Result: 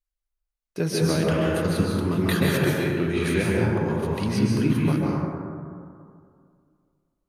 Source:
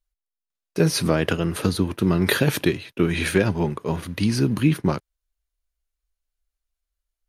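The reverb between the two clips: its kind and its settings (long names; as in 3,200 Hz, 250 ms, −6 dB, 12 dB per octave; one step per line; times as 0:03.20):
dense smooth reverb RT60 2.3 s, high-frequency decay 0.3×, pre-delay 120 ms, DRR −4.5 dB
level −7 dB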